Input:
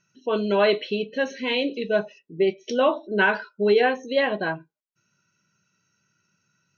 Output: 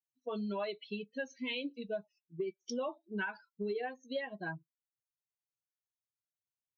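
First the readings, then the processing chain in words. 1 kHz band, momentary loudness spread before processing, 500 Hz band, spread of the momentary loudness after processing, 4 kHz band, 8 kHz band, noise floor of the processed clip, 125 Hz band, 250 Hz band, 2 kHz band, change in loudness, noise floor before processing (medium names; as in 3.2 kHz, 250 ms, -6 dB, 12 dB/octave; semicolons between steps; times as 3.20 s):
-17.5 dB, 8 LU, -17.5 dB, 5 LU, -15.0 dB, no reading, under -85 dBFS, -11.5 dB, -12.5 dB, -16.5 dB, -16.5 dB, -77 dBFS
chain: expander on every frequency bin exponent 2; compression 6:1, threshold -32 dBFS, peak gain reduction 14.5 dB; trim -3 dB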